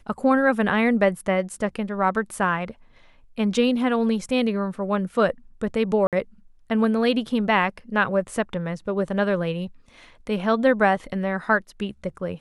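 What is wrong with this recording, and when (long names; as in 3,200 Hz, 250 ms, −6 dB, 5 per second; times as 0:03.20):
0:06.07–0:06.13: drop-out 57 ms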